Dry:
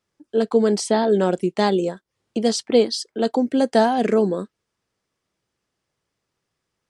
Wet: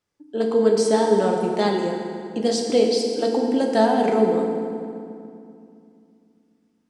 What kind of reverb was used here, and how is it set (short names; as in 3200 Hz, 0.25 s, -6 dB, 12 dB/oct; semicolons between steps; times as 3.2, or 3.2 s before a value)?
FDN reverb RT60 2.5 s, low-frequency decay 1.4×, high-frequency decay 0.7×, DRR 1 dB; gain -3.5 dB